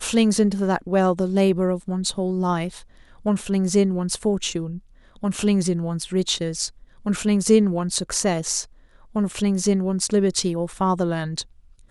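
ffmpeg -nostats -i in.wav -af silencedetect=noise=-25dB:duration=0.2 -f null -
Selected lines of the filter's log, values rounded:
silence_start: 2.68
silence_end: 3.26 | silence_duration: 0.58
silence_start: 4.71
silence_end: 5.24 | silence_duration: 0.53
silence_start: 6.67
silence_end: 7.06 | silence_duration: 0.39
silence_start: 8.61
silence_end: 9.16 | silence_duration: 0.54
silence_start: 11.42
silence_end: 11.91 | silence_duration: 0.49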